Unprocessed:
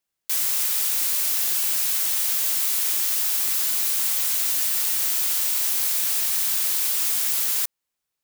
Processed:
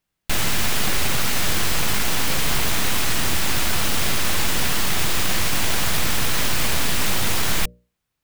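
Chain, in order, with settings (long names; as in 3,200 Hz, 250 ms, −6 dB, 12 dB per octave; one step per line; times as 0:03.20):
stylus tracing distortion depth 0.11 ms
bass and treble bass +11 dB, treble −7 dB
mains-hum notches 60/120/180/240/300/360/420/480/540/600 Hz
level +6.5 dB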